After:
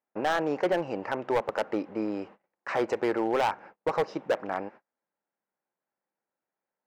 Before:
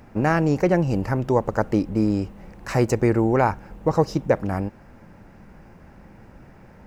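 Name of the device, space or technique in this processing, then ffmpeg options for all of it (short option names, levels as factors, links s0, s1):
walkie-talkie: -af "highpass=500,lowpass=2500,asoftclip=type=hard:threshold=0.1,agate=range=0.0158:threshold=0.00501:ratio=16:detection=peak"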